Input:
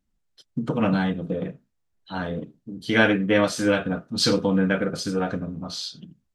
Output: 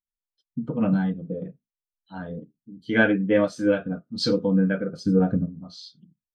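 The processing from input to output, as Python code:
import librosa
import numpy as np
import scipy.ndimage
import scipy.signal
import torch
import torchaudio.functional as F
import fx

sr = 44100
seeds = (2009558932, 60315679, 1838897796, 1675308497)

y = fx.low_shelf(x, sr, hz=370.0, db=9.0, at=(5.06, 5.46))
y = fx.spectral_expand(y, sr, expansion=1.5)
y = y * 10.0 ** (-1.5 / 20.0)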